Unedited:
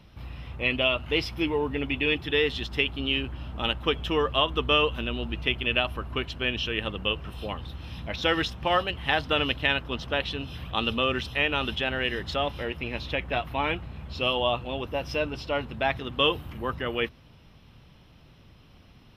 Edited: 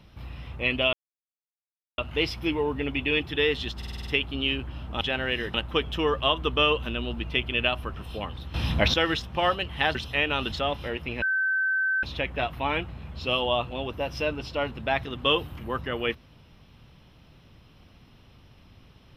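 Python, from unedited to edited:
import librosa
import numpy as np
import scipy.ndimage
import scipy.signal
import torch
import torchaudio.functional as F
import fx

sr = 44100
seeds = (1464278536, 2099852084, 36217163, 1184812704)

y = fx.edit(x, sr, fx.insert_silence(at_s=0.93, length_s=1.05),
    fx.stutter(start_s=2.72, slice_s=0.05, count=7),
    fx.cut(start_s=6.06, length_s=1.16),
    fx.clip_gain(start_s=7.82, length_s=0.4, db=11.5),
    fx.cut(start_s=9.23, length_s=1.94),
    fx.move(start_s=11.74, length_s=0.53, to_s=3.66),
    fx.insert_tone(at_s=12.97, length_s=0.81, hz=1540.0, db=-22.0), tone=tone)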